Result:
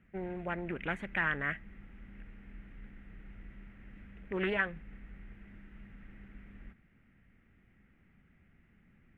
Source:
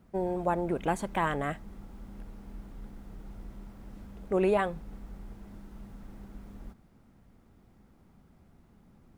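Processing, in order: FFT filter 190 Hz 0 dB, 990 Hz -8 dB, 1.9 kHz +14 dB, 2.8 kHz +8 dB, 4.4 kHz -16 dB; loudspeaker Doppler distortion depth 0.27 ms; trim -5.5 dB

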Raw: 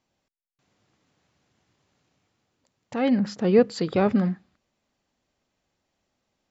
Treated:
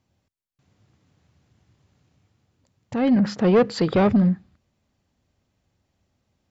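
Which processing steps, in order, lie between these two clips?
peaking EQ 84 Hz +15 dB 2.3 oct; 3.16–4.09 s: overdrive pedal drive 15 dB, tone 2.5 kHz, clips at -3 dBFS; saturation -11 dBFS, distortion -15 dB

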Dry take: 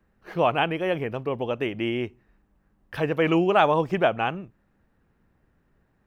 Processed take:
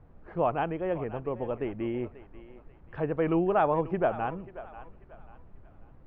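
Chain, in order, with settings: added noise brown -45 dBFS; low-pass 1.3 kHz 12 dB/octave; on a send: thinning echo 538 ms, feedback 37%, high-pass 500 Hz, level -14 dB; on the sum: trim -4.5 dB

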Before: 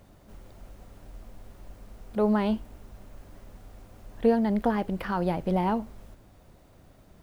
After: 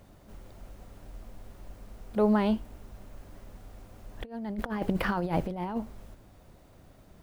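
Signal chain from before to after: 4.21–5.77 s: compressor with a negative ratio -30 dBFS, ratio -0.5

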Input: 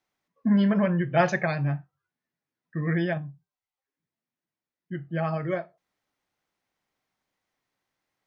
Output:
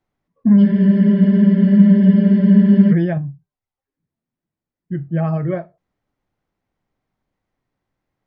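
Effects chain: tilt EQ -3.5 dB/octave; spectral freeze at 0.66 s, 2.26 s; trim +2 dB

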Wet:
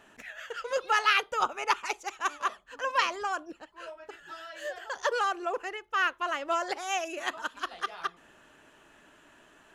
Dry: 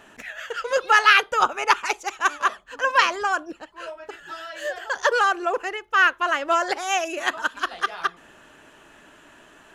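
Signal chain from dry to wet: dynamic bell 1.6 kHz, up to -5 dB, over -34 dBFS, Q 4.6; trim -7.5 dB

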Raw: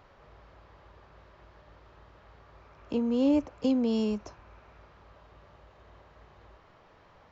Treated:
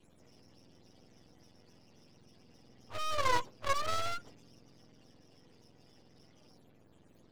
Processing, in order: spectrum inverted on a logarithmic axis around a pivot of 540 Hz; Chebyshev shaper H 5 -28 dB, 7 -29 dB, 8 -15 dB, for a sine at -16 dBFS; half-wave rectifier

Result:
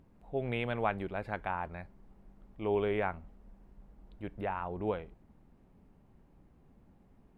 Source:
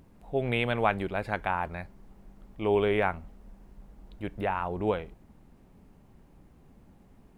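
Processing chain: treble shelf 3.7 kHz -9 dB; trim -5.5 dB

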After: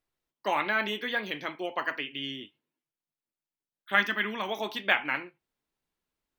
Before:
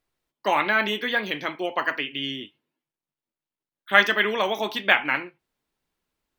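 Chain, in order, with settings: 3.95–4.49 s: graphic EQ 250/500/4000/8000 Hz +5/-10/-3/-5 dB; trim -6 dB

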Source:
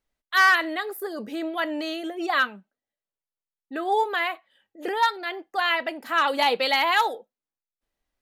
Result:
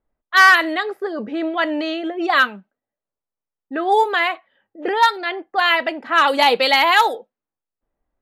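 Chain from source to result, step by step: level-controlled noise filter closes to 1.1 kHz, open at -19 dBFS; trim +7 dB

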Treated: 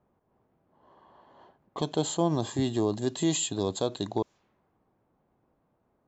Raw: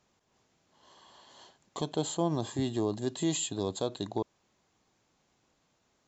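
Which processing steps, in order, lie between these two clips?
level-controlled noise filter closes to 920 Hz, open at -31 dBFS; trim +3.5 dB

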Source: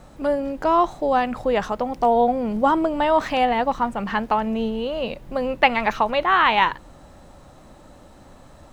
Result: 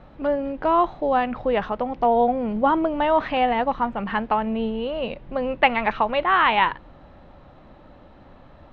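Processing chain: low-pass 3.5 kHz 24 dB/octave; trim -1 dB

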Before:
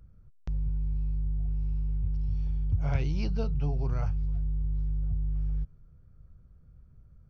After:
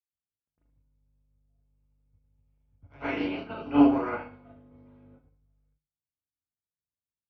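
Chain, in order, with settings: 2.90–5.07 s: spectral peaks clipped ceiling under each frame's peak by 30 dB; high-pass 48 Hz; feedback comb 96 Hz, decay 0.52 s, harmonics odd, mix 80%; overdrive pedal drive 17 dB, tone 3 kHz, clips at -12.5 dBFS; low-pass 4.1 kHz 12 dB/octave; peaking EQ 260 Hz +9 dB 1.9 oct; band-stop 1.7 kHz, Q 25; reverberation, pre-delay 103 ms, DRR -14.5 dB; upward expansion 2.5:1, over -37 dBFS; trim -7 dB

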